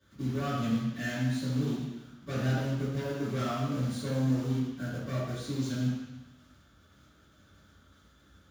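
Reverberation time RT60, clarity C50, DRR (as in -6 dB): 1.1 s, -1.5 dB, -15.5 dB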